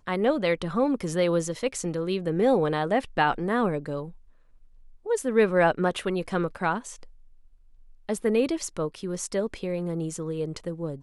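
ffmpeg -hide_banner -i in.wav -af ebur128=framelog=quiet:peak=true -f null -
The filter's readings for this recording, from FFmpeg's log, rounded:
Integrated loudness:
  I:         -26.6 LUFS
  Threshold: -37.4 LUFS
Loudness range:
  LRA:         4.6 LU
  Threshold: -47.3 LUFS
  LRA low:   -30.2 LUFS
  LRA high:  -25.5 LUFS
True peak:
  Peak:       -8.8 dBFS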